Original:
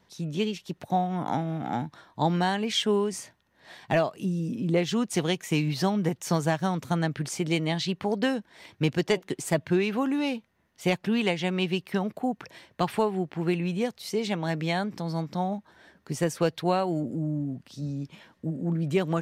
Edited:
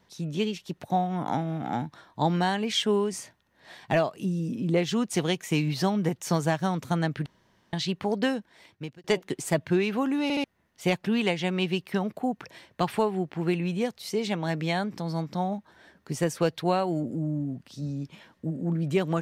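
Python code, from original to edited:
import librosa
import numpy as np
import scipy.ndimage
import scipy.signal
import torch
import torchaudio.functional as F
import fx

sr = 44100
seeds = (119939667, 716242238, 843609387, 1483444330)

y = fx.edit(x, sr, fx.room_tone_fill(start_s=7.26, length_s=0.47),
    fx.fade_out_span(start_s=8.27, length_s=0.77),
    fx.stutter_over(start_s=10.23, slice_s=0.07, count=3), tone=tone)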